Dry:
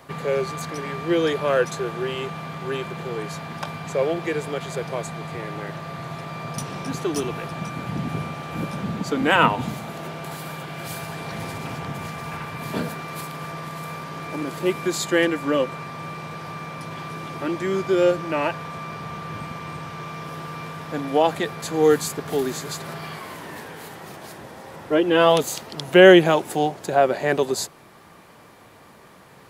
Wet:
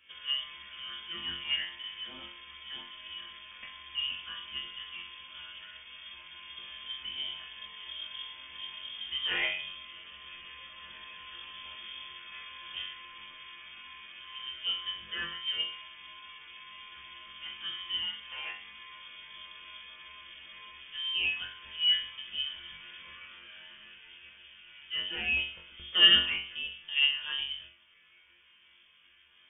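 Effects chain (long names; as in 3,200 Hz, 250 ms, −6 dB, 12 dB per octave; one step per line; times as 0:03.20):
parametric band 2,600 Hz −7.5 dB 0.26 octaves
resonators tuned to a chord F#2 fifth, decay 0.44 s
voice inversion scrambler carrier 3,400 Hz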